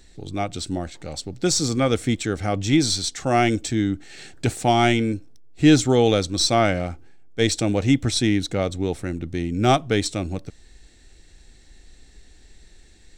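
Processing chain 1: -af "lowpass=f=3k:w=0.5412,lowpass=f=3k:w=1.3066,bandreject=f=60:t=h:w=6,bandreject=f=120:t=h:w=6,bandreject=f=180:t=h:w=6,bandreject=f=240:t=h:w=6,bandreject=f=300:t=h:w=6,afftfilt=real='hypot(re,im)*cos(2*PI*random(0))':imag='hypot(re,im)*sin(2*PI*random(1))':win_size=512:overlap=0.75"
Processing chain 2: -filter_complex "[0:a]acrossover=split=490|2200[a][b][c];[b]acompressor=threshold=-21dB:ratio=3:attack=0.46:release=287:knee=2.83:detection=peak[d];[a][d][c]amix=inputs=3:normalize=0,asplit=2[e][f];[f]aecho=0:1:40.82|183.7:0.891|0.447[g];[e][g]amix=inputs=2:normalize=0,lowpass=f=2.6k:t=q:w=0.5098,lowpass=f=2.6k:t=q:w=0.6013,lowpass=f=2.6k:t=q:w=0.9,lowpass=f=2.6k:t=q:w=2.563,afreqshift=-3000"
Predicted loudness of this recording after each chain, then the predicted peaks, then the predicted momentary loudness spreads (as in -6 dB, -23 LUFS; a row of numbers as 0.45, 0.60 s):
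-29.0, -17.0 LUFS; -6.0, -2.0 dBFS; 14, 12 LU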